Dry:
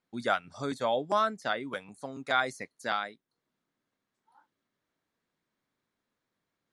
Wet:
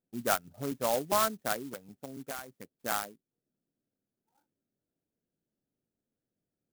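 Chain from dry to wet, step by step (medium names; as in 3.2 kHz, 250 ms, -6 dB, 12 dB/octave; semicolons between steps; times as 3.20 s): local Wiener filter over 41 samples; 1.60–2.77 s: compression 8:1, threshold -37 dBFS, peak gain reduction 16 dB; sampling jitter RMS 0.084 ms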